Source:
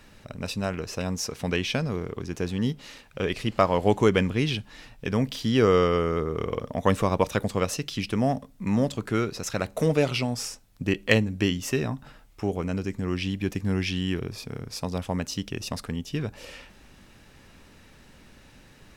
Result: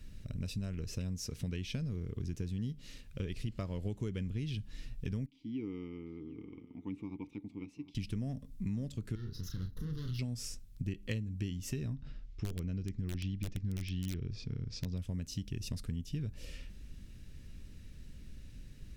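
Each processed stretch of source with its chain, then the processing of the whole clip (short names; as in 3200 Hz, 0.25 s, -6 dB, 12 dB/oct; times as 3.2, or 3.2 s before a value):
5.26–7.95 vowel filter u + echo 0.747 s -16 dB
9.15–10.19 tube stage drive 31 dB, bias 0.7 + fixed phaser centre 2400 Hz, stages 6 + doubler 33 ms -6 dB
11.93–14.97 LPF 5700 Hz 24 dB/oct + wrapped overs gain 17.5 dB
whole clip: passive tone stack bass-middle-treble 10-0-1; notch 790 Hz, Q 12; compressor 6:1, threshold -48 dBFS; gain +14 dB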